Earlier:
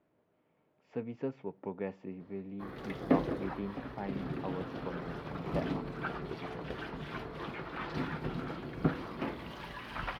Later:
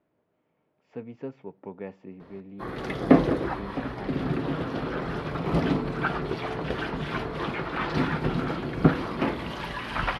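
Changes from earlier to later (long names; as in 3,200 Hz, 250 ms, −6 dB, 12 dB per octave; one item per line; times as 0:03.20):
background +10.5 dB
master: add linear-phase brick-wall low-pass 12,000 Hz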